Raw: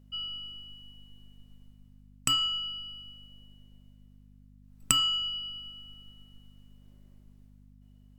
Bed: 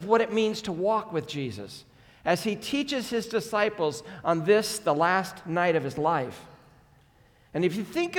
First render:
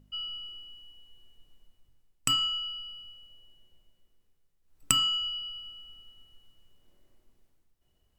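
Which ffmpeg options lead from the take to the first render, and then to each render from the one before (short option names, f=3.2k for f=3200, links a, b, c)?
-af "bandreject=f=50:t=h:w=4,bandreject=f=100:t=h:w=4,bandreject=f=150:t=h:w=4,bandreject=f=200:t=h:w=4,bandreject=f=250:t=h:w=4"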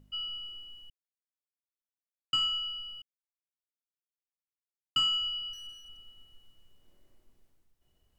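-filter_complex "[0:a]asettb=1/sr,asplit=3[a][b][c];[a]atrim=end=5.534[d];[b]atrim=start=5.53:end=6.01,asetpts=PTS-STARTPTS,afade=t=in:d=0.004:c=qsin,afade=t=out:st=0.476:d=0.004:c=qsin,aeval=exprs='clip(val(0),-1,0.00355)':c=same[e];[c]atrim=start=6.006[f];[d][e]acrossfade=d=0.004:c1=hsin:c2=qsin[g];[g][f]acrossfade=d=0.004:c1=qsin:c2=hsin,asplit=5[h][i][j][k][l];[h]atrim=end=0.9,asetpts=PTS-STARTPTS,afade=t=out:st=0.896:d=0.004:c=hsin[m];[i]atrim=start=0.9:end=2.33,asetpts=PTS-STARTPTS,volume=0[n];[j]atrim=start=2.33:end=3.02,asetpts=PTS-STARTPTS,afade=t=in:d=0.004:c=hsin,afade=t=out:st=0.686:d=0.004:c=hsin[o];[k]atrim=start=3.02:end=4.96,asetpts=PTS-STARTPTS,volume=0[p];[l]atrim=start=4.96,asetpts=PTS-STARTPTS,afade=t=in:d=0.004:c=hsin[q];[m][n][o][p][q]concat=n=5:v=0:a=1"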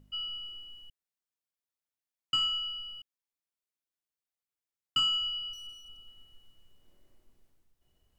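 -filter_complex "[0:a]asettb=1/sr,asplit=3[a][b][c];[a]atrim=end=4.994[d];[b]atrim=start=4.99:end=6.08,asetpts=PTS-STARTPTS,afade=t=in:d=0.004:c=qsin,afade=t=out:st=1.086:d=0.004:c=qsin,asuperstop=centerf=1900:order=8:qfactor=2.1[e];[c]atrim=start=6.076[f];[d][e]acrossfade=d=0.004:c1=hsin:c2=qsin[g];[g][f]acrossfade=d=0.004:c1=qsin:c2=hsin"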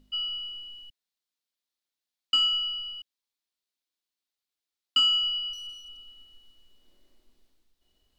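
-af "equalizer=f=125:t=o:w=1:g=-12,equalizer=f=250:t=o:w=1:g=5,equalizer=f=4k:t=o:w=1:g=10"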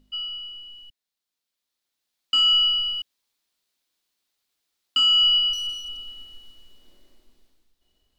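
-af "dynaudnorm=f=560:g=7:m=14dB,alimiter=limit=-13dB:level=0:latency=1"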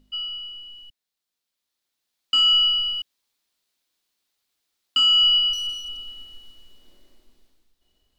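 -af "volume=1dB"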